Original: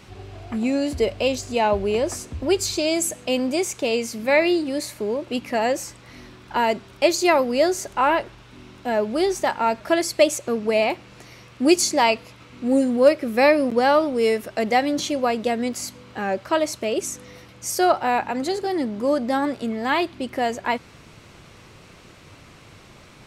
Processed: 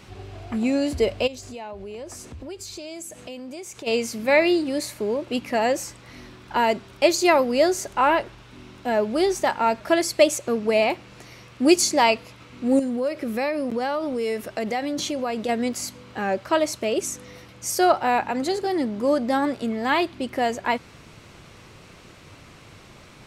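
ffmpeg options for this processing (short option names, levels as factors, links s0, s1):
-filter_complex "[0:a]asplit=3[s0][s1][s2];[s0]afade=t=out:st=1.26:d=0.02[s3];[s1]acompressor=threshold=0.0158:ratio=4:attack=3.2:release=140:knee=1:detection=peak,afade=t=in:st=1.26:d=0.02,afade=t=out:st=3.86:d=0.02[s4];[s2]afade=t=in:st=3.86:d=0.02[s5];[s3][s4][s5]amix=inputs=3:normalize=0,asettb=1/sr,asplit=3[s6][s7][s8];[s6]atrim=end=12.794[s9];[s7]atrim=start=12.79:end=15.49,asetpts=PTS-STARTPTS,afade=t=in:d=0.004:c=qsin,afade=t=out:st=2.696:d=0.004:c=qsin,acompressor=threshold=0.0708:ratio=4:attack=3.2:release=140:knee=1:detection=peak[s10];[s8]atrim=start=15.486[s11];[s9][s10]acrossfade=d=0.004:c1=hsin:c2=qsin[s12];[s12][s11]acrossfade=d=0.004:c1=qsin:c2=hsin"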